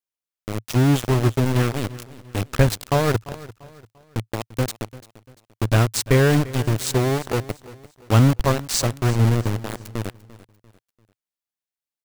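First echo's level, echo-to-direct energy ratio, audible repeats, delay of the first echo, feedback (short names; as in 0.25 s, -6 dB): -18.5 dB, -18.0 dB, 3, 0.344 s, 39%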